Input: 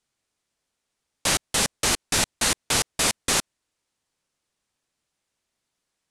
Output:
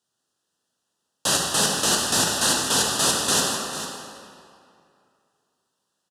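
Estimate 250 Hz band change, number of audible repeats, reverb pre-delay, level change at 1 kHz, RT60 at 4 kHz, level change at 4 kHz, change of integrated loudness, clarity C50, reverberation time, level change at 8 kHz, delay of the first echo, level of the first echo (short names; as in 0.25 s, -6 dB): +4.0 dB, 1, 6 ms, +4.0 dB, 1.8 s, +3.5 dB, +2.5 dB, 0.0 dB, 2.4 s, +3.0 dB, 0.447 s, -12.0 dB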